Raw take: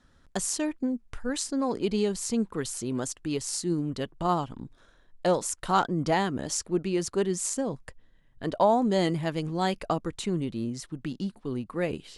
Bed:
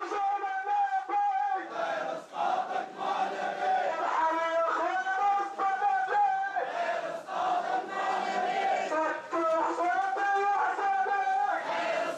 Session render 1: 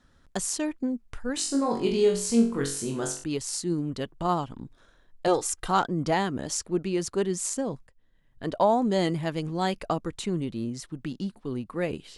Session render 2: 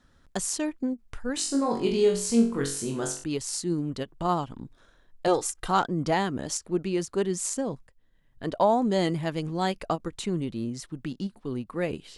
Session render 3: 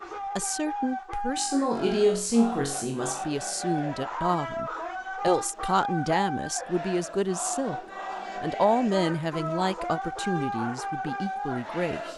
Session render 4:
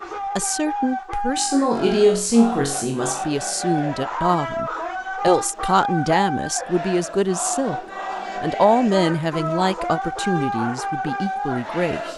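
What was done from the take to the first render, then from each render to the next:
0:01.35–0:03.24: flutter between parallel walls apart 3.7 metres, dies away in 0.42 s; 0:05.27–0:05.68: comb filter 2.5 ms, depth 81%; 0:07.87–0:08.60: fade in equal-power, from −18.5 dB
every ending faded ahead of time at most 520 dB per second
mix in bed −5 dB
level +6.5 dB

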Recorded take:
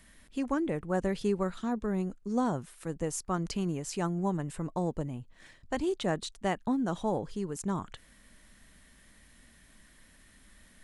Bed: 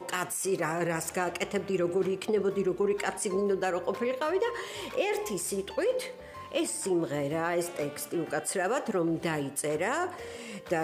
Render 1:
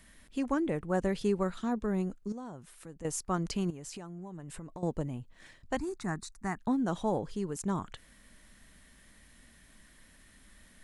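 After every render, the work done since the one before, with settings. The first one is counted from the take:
0:02.32–0:03.05: downward compressor 2 to 1, threshold −51 dBFS
0:03.70–0:04.83: downward compressor 16 to 1, threshold −39 dBFS
0:05.77–0:06.59: phaser with its sweep stopped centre 1,300 Hz, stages 4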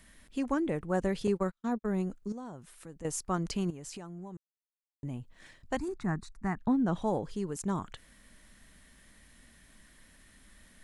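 0:01.27–0:01.89: noise gate −34 dBFS, range −44 dB
0:04.37–0:05.03: silence
0:05.88–0:07.02: bass and treble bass +5 dB, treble −10 dB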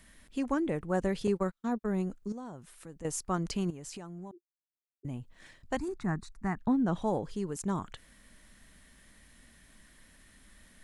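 0:04.31–0:05.05: flat-topped band-pass 370 Hz, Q 5.7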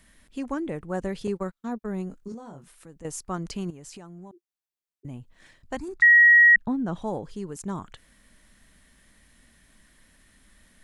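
0:02.09–0:02.72: double-tracking delay 22 ms −4.5 dB
0:06.02–0:06.56: beep over 1,900 Hz −11 dBFS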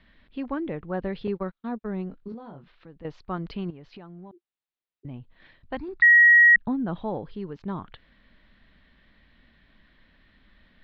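Butterworth low-pass 4,200 Hz 48 dB per octave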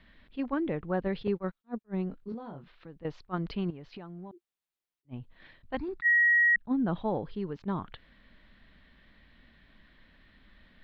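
downward compressor 12 to 1, threshold −21 dBFS, peak gain reduction 8.5 dB
level that may rise only so fast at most 500 dB per second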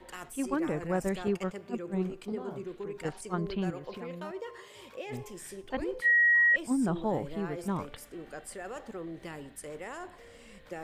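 mix in bed −12 dB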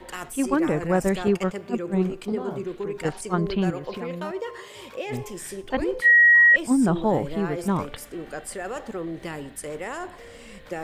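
level +8.5 dB

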